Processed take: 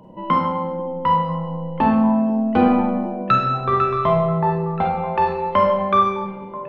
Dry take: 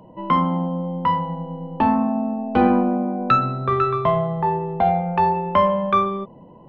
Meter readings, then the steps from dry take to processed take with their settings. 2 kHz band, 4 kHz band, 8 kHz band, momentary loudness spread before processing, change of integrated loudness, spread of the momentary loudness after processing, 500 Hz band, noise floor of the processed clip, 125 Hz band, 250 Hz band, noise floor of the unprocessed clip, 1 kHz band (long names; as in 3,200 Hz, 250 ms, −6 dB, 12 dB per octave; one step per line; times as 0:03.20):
+1.5 dB, +1.5 dB, can't be measured, 7 LU, +1.0 dB, 8 LU, +1.5 dB, −33 dBFS, +0.5 dB, +1.5 dB, −46 dBFS, +1.0 dB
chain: notch filter 700 Hz, Q 15
on a send: echo through a band-pass that steps 492 ms, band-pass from 310 Hz, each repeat 1.4 octaves, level −11 dB
on the sum: four-comb reverb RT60 0.98 s, combs from 32 ms, DRR 2.5 dB